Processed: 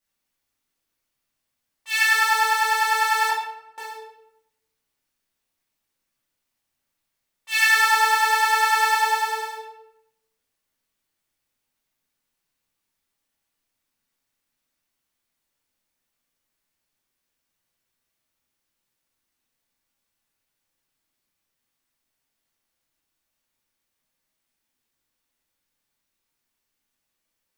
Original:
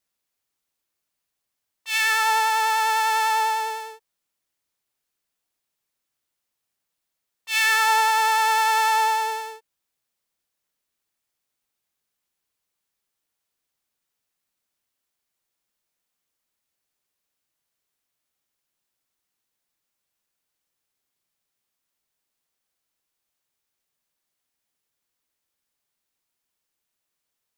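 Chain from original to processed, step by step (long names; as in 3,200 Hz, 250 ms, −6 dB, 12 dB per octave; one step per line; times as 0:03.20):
0:03.29–0:03.78: gate with flip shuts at −23 dBFS, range −40 dB
convolution reverb RT60 0.85 s, pre-delay 3 ms, DRR −7 dB
level −5 dB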